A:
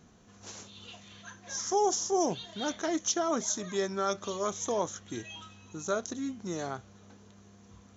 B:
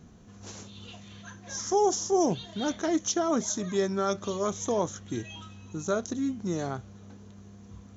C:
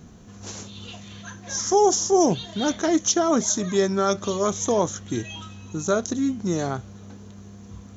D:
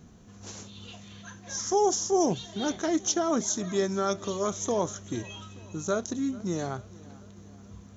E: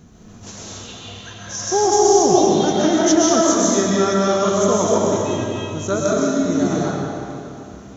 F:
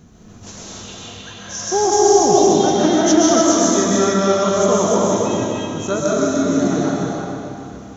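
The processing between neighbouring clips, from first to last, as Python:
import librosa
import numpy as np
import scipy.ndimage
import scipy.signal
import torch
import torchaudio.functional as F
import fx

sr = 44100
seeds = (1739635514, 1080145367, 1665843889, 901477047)

y1 = fx.low_shelf(x, sr, hz=340.0, db=9.5)
y2 = fx.high_shelf(y1, sr, hz=5800.0, db=4.0)
y2 = y2 * 10.0 ** (6.0 / 20.0)
y3 = fx.echo_feedback(y2, sr, ms=438, feedback_pct=54, wet_db=-22.0)
y3 = y3 * 10.0 ** (-6.0 / 20.0)
y4 = fx.rev_freeverb(y3, sr, rt60_s=2.6, hf_ratio=0.8, predelay_ms=90, drr_db=-5.5)
y4 = y4 * 10.0 ** (5.5 / 20.0)
y5 = y4 + 10.0 ** (-5.0 / 20.0) * np.pad(y4, (int(300 * sr / 1000.0), 0))[:len(y4)]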